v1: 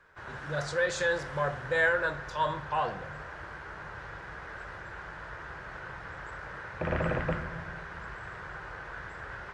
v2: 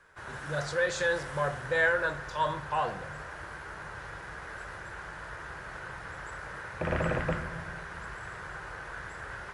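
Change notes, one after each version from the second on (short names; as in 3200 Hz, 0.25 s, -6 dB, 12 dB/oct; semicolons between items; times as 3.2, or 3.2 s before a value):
background: remove air absorption 100 m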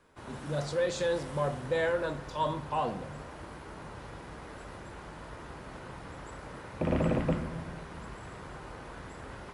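master: add fifteen-band EQ 250 Hz +12 dB, 1600 Hz -12 dB, 6300 Hz -3 dB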